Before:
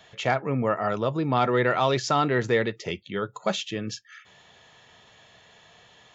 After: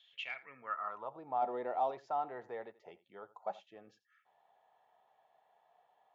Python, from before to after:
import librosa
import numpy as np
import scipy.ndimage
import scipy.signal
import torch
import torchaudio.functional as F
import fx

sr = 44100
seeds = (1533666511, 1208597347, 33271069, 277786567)

p1 = x + fx.echo_single(x, sr, ms=85, db=-19.0, dry=0)
p2 = fx.filter_sweep_bandpass(p1, sr, from_hz=3400.0, to_hz=780.0, start_s=0.06, end_s=1.15, q=5.5)
p3 = fx.curve_eq(p2, sr, hz=(140.0, 230.0, 1500.0, 7500.0), db=(0, 9, -3, 11), at=(1.42, 1.91))
y = p3 * 10.0 ** (-5.0 / 20.0)